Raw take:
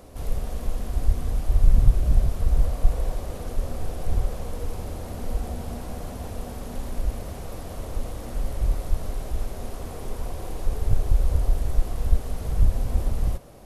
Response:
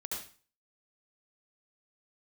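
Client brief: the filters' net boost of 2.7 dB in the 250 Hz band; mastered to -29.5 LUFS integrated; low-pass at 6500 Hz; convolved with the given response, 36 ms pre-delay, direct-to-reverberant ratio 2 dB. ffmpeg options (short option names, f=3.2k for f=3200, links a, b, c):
-filter_complex "[0:a]lowpass=6.5k,equalizer=f=250:t=o:g=3.5,asplit=2[a][b];[1:a]atrim=start_sample=2205,adelay=36[c];[b][c]afir=irnorm=-1:irlink=0,volume=-3dB[d];[a][d]amix=inputs=2:normalize=0,volume=-3.5dB"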